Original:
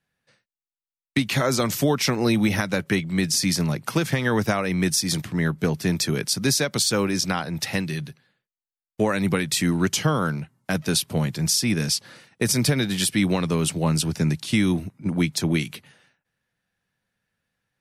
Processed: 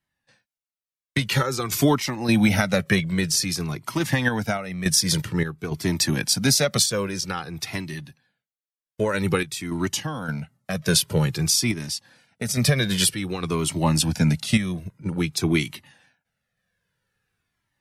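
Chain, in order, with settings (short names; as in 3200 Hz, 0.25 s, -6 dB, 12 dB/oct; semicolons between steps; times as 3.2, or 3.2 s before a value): random-step tremolo 3.5 Hz, depth 75%; added harmonics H 7 -41 dB, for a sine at -8 dBFS; cascading flanger falling 0.51 Hz; gain +8 dB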